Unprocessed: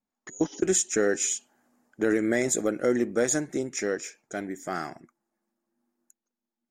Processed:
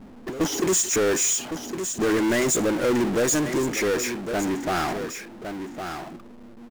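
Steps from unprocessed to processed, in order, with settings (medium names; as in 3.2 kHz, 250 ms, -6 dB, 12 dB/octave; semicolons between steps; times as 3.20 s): level-controlled noise filter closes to 360 Hz, open at -24.5 dBFS; delay 1109 ms -22.5 dB; power-law waveshaper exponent 0.35; trim -3.5 dB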